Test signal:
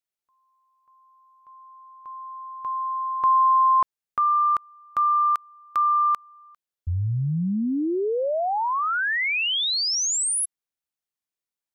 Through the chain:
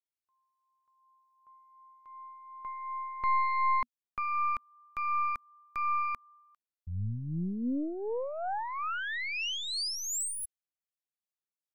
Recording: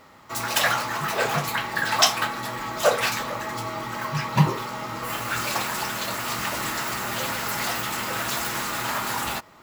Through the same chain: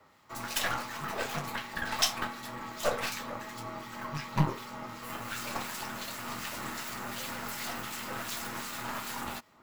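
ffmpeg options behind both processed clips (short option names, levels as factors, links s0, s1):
-filter_complex "[0:a]aeval=exprs='0.75*(cos(1*acos(clip(val(0)/0.75,-1,1)))-cos(1*PI/2))+0.075*(cos(8*acos(clip(val(0)/0.75,-1,1)))-cos(8*PI/2))':c=same,adynamicequalizer=threshold=0.00316:dfrequency=240:dqfactor=5.1:tfrequency=240:tqfactor=5.1:attack=5:release=100:ratio=0.375:range=3:mode=boostabove:tftype=bell,acrossover=split=1900[s0][s1];[s0]aeval=exprs='val(0)*(1-0.5/2+0.5/2*cos(2*PI*2.7*n/s))':c=same[s2];[s1]aeval=exprs='val(0)*(1-0.5/2-0.5/2*cos(2*PI*2.7*n/s))':c=same[s3];[s2][s3]amix=inputs=2:normalize=0,volume=0.376"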